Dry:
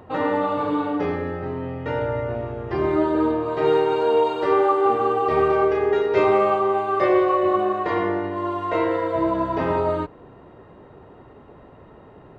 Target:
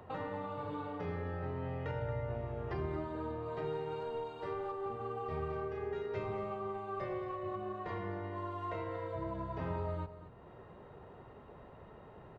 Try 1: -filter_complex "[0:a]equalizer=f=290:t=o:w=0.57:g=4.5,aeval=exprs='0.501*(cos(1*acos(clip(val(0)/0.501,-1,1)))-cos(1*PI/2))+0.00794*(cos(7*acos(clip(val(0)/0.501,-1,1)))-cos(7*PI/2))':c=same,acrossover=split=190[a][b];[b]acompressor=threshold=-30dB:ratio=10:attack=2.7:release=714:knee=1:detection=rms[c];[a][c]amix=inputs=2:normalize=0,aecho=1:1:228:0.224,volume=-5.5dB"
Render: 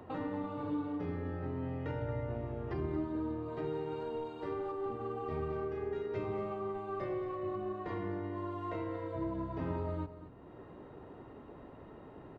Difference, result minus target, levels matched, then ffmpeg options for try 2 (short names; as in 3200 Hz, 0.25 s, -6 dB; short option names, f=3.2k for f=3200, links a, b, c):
250 Hz band +4.5 dB
-filter_complex "[0:a]equalizer=f=290:t=o:w=0.57:g=-7,aeval=exprs='0.501*(cos(1*acos(clip(val(0)/0.501,-1,1)))-cos(1*PI/2))+0.00794*(cos(7*acos(clip(val(0)/0.501,-1,1)))-cos(7*PI/2))':c=same,acrossover=split=190[a][b];[b]acompressor=threshold=-30dB:ratio=10:attack=2.7:release=714:knee=1:detection=rms[c];[a][c]amix=inputs=2:normalize=0,aecho=1:1:228:0.224,volume=-5.5dB"